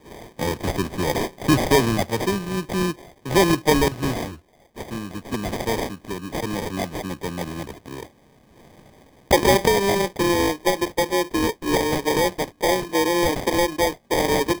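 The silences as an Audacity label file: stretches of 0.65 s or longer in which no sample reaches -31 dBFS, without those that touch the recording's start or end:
8.030000	9.310000	silence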